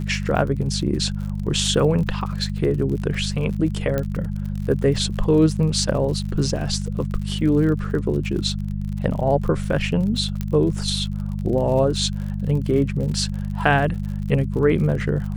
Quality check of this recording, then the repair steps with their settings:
surface crackle 54 per second −30 dBFS
mains hum 50 Hz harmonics 4 −26 dBFS
0:03.98: click −11 dBFS
0:10.41: click −13 dBFS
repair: click removal
hum removal 50 Hz, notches 4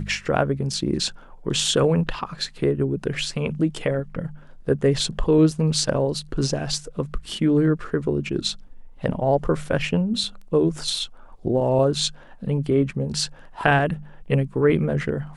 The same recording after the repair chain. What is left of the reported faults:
0:10.41: click

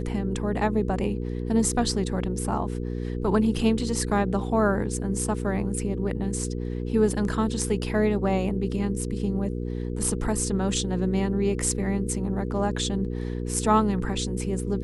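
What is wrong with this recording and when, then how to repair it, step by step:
mains hum 60 Hz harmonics 8 −30 dBFS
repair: hum removal 60 Hz, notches 8

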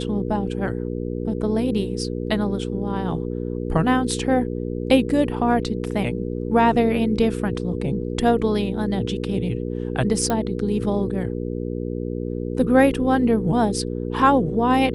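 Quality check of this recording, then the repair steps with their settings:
mains hum 60 Hz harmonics 8 −27 dBFS
0:10.30: click −10 dBFS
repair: click removal
hum removal 60 Hz, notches 8

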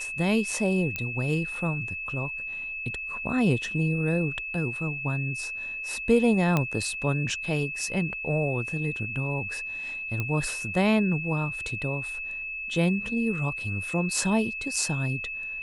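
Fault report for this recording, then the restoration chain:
whistle 2,600 Hz −32 dBFS
0:00.96: click −15 dBFS
0:06.57: click −11 dBFS
0:10.20: click −16 dBFS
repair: click removal
notch filter 2,600 Hz, Q 30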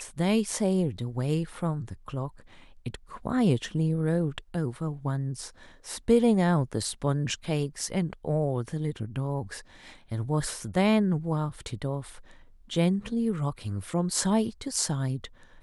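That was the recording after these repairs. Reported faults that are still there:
none of them is left

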